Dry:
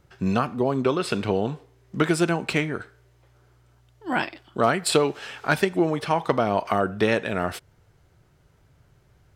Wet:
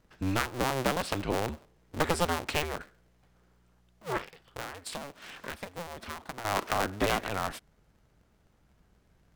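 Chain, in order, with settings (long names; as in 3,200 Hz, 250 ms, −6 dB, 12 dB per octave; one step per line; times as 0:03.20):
sub-harmonics by changed cycles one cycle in 2, inverted
0:04.17–0:06.45: downward compressor 6 to 1, threshold −31 dBFS, peak gain reduction 15.5 dB
level −6.5 dB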